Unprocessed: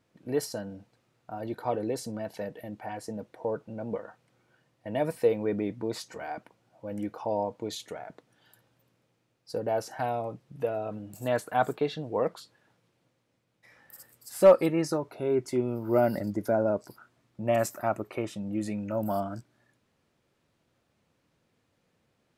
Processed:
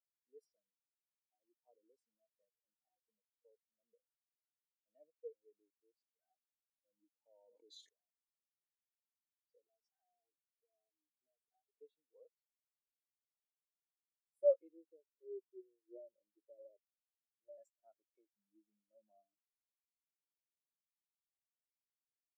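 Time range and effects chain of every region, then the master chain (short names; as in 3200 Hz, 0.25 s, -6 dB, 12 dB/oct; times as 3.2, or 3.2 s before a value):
5.12–6.14 G.711 law mismatch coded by A + bell 230 Hz -6 dB 0.58 oct
7.32–7.89 low shelf 140 Hz -7 dB + fast leveller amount 100%
9.64–11.75 comb 2.7 ms, depth 97% + compressor 12:1, threshold -33 dBFS
14.71–17.58 inverse Chebyshev low-pass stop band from 3700 Hz, stop band 80 dB + comb 2.1 ms, depth 64%
whole clip: HPF 470 Hz 12 dB/oct; bell 940 Hz -13.5 dB 2.6 oct; spectral expander 2.5:1; gain -3 dB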